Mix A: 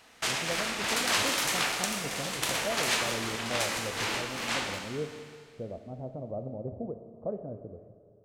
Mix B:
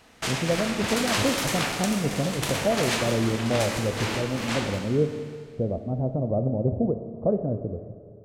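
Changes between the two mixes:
speech +6.0 dB; master: add low shelf 490 Hz +9.5 dB

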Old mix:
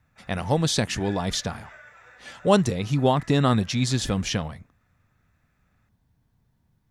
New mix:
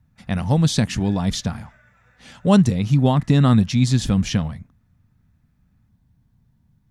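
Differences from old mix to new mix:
speech: add resonant low shelf 290 Hz +6.5 dB, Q 1.5; background -8.5 dB

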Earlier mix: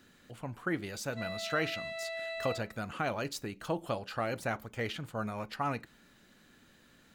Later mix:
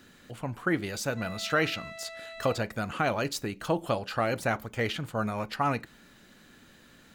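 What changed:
speech +6.0 dB; reverb: off

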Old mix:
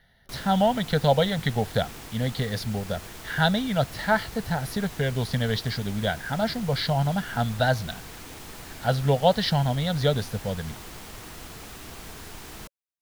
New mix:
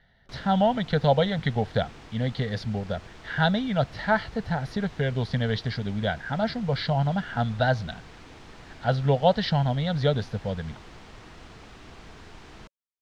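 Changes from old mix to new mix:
background -3.5 dB; master: add air absorption 130 m

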